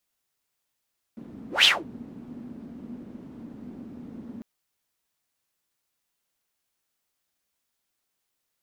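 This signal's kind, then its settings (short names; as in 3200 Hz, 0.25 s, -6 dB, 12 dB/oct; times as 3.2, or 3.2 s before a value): whoosh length 3.25 s, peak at 0.48, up 0.16 s, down 0.21 s, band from 240 Hz, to 3400 Hz, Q 6, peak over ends 25 dB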